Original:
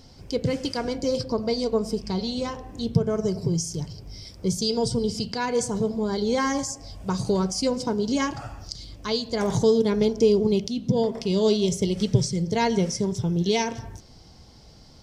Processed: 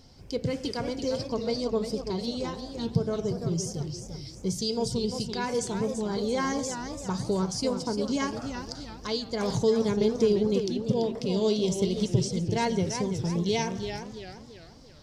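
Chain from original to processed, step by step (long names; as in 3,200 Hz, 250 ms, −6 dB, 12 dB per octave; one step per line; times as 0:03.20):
feedback echo with a swinging delay time 342 ms, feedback 43%, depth 182 cents, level −8 dB
level −4.5 dB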